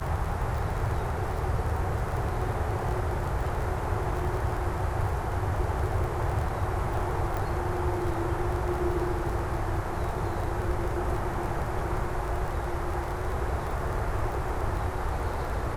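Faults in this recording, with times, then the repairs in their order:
surface crackle 24 per second −32 dBFS
0:07.37: click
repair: click removal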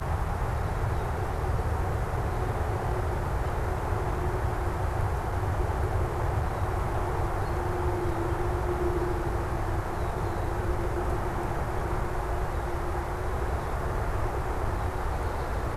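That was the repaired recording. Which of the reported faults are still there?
none of them is left

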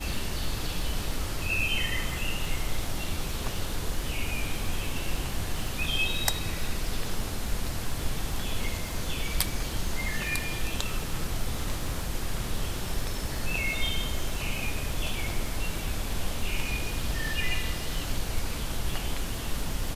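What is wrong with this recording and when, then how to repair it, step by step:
surface crackle 48 per second −35 dBFS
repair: click removal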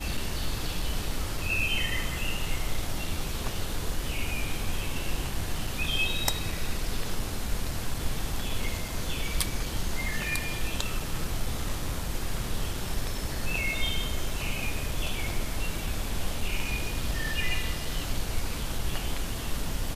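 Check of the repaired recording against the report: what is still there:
none of them is left

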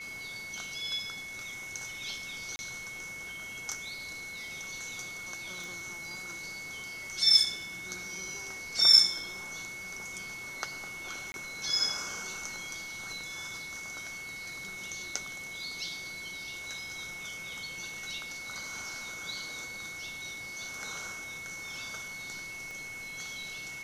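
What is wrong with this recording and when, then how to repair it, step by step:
whistle 2,200 Hz −40 dBFS
0:02.56–0:02.59: drop-out 30 ms
0:05.64: click
0:11.32–0:11.34: drop-out 21 ms
0:22.71: click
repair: click removal
notch filter 2,200 Hz, Q 30
repair the gap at 0:02.56, 30 ms
repair the gap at 0:11.32, 21 ms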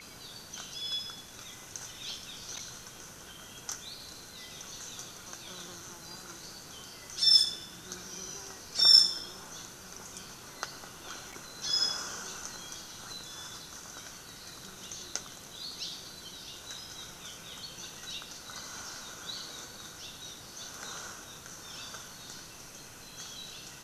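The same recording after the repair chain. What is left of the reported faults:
0:05.64: click
0:22.71: click

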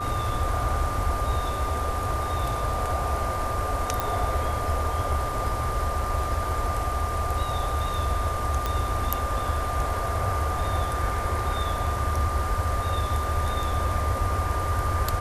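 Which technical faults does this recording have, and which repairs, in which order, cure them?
whistle 1,200 Hz −30 dBFS
0:04.00: click
0:08.66: click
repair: click removal
notch filter 1,200 Hz, Q 30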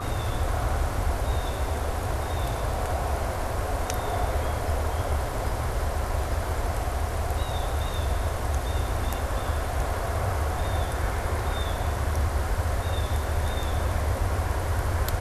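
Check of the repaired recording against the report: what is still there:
none of them is left

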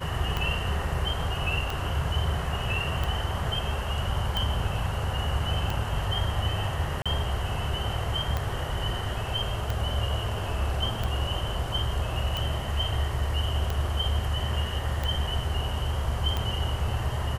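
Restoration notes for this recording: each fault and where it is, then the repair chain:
scratch tick 45 rpm −15 dBFS
0:07.02–0:07.06: drop-out 36 ms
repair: click removal
repair the gap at 0:07.02, 36 ms

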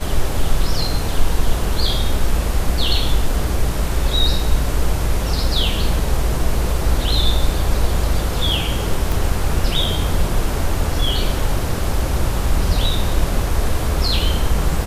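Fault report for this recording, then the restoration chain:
0:09.12: click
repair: click removal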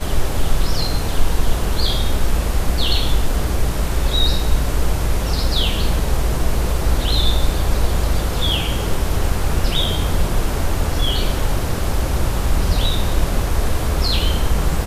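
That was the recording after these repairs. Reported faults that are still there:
0:09.12: click

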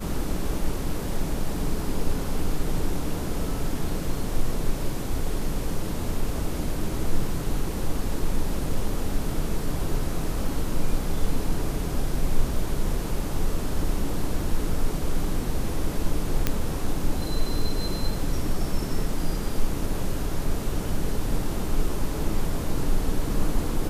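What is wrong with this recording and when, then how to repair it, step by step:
0:16.47: click −7 dBFS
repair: click removal

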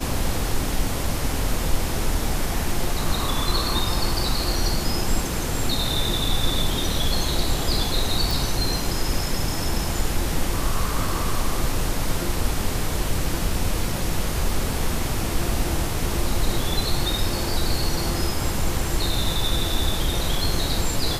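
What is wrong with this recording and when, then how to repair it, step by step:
0:08.31: click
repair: click removal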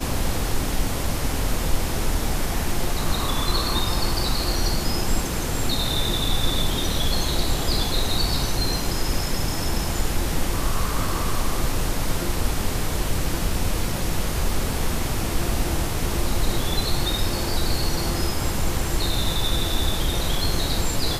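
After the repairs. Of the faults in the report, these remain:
none of them is left

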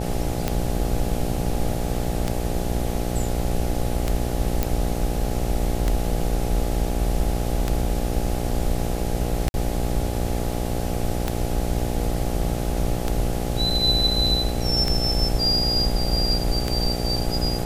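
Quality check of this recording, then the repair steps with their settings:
mains buzz 60 Hz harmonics 14 −27 dBFS
scratch tick 33 1/3 rpm −8 dBFS
0:04.63: click −6 dBFS
0:09.49–0:09.54: drop-out 51 ms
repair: click removal
hum removal 60 Hz, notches 14
repair the gap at 0:09.49, 51 ms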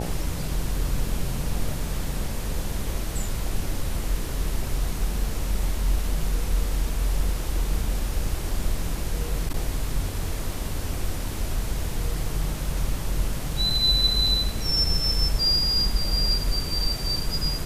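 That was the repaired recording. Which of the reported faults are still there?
none of them is left

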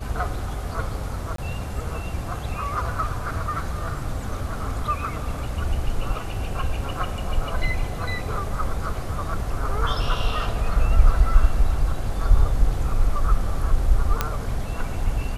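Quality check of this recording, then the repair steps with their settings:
0:01.36–0:01.38: drop-out 23 ms
0:14.21: click −6 dBFS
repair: click removal
repair the gap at 0:01.36, 23 ms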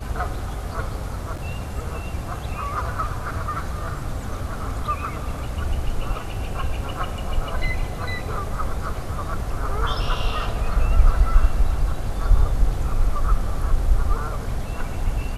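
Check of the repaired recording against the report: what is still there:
0:14.21: click

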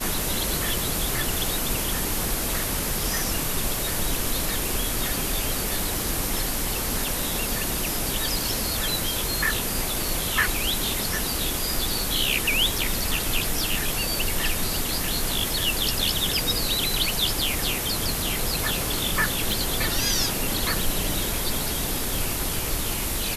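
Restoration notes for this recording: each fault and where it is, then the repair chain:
0:19.52: click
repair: click removal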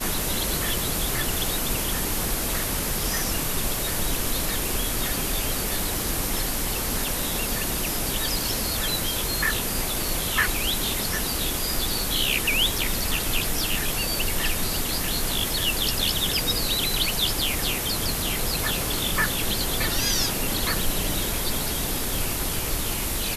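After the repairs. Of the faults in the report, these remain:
none of them is left

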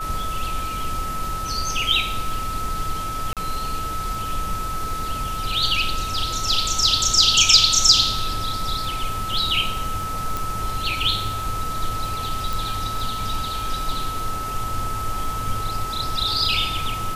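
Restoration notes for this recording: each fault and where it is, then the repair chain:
surface crackle 23 per second −30 dBFS
whistle 1,300 Hz −27 dBFS
0:03.33–0:03.37: drop-out 37 ms
0:10.37: click
0:12.53: click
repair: click removal
notch filter 1,300 Hz, Q 30
repair the gap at 0:03.33, 37 ms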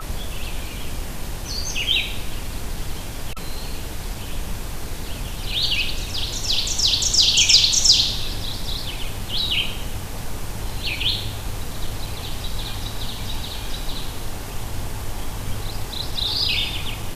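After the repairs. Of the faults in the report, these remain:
none of them is left

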